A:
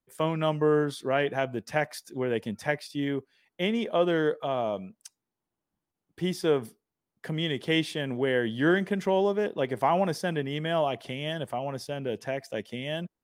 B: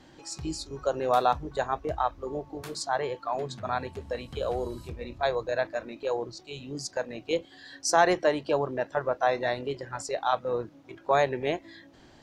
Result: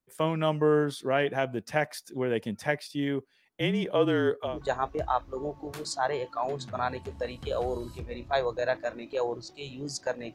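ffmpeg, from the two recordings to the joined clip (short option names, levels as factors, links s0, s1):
-filter_complex "[0:a]asettb=1/sr,asplit=3[s0][s1][s2];[s0]atrim=end=3.604[s3];[s1]atrim=start=3.6:end=4.59,asetpts=PTS-STARTPTS,afade=t=in:d=0.004:c=qsin,afade=t=out:st=0.986:d=0.004:c=qsin,afreqshift=-36[s4];[s2]atrim=start=4.586[s5];[s3][s4]acrossfade=d=0.004:c1=hsin:c2=qsin[s6];[s6][s5]acrossfade=d=0.004:c1=qsin:c2=hsin,apad=whole_dur=10.34,atrim=end=10.34,atrim=end=4.59,asetpts=PTS-STARTPTS[s7];[1:a]atrim=start=1.35:end=7.24,asetpts=PTS-STARTPTS[s8];[s7][s8]acrossfade=d=0.14:c1=tri:c2=tri"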